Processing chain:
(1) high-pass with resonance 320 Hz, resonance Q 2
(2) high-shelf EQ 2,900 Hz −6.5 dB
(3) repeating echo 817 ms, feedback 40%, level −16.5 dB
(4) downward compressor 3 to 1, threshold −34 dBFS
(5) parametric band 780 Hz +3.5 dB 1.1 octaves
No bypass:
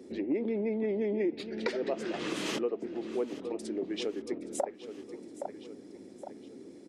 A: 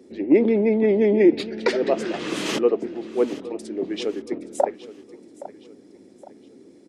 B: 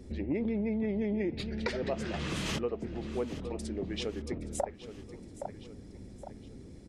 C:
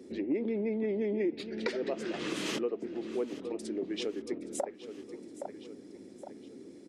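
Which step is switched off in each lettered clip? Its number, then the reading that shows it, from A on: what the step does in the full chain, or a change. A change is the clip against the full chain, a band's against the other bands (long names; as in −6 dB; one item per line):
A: 4, average gain reduction 6.5 dB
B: 1, 125 Hz band +9.5 dB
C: 5, 1 kHz band −2.5 dB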